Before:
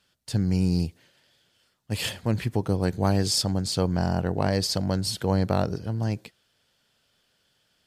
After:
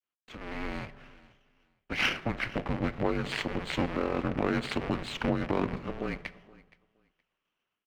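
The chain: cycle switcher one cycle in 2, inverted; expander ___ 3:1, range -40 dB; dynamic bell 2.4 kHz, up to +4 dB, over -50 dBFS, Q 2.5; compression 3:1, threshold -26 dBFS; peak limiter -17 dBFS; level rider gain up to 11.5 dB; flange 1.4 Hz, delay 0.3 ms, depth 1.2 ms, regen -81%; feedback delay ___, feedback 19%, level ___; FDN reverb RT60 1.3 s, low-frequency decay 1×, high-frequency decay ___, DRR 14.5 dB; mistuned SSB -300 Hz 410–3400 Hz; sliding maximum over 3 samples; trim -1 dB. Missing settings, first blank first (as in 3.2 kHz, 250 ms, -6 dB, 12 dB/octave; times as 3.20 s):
-57 dBFS, 470 ms, -22 dB, 0.4×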